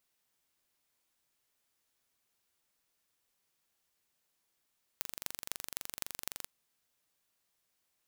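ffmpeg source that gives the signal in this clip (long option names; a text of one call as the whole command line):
ffmpeg -f lavfi -i "aevalsrc='0.447*eq(mod(n,1861),0)*(0.5+0.5*eq(mod(n,11166),0))':duration=1.46:sample_rate=44100" out.wav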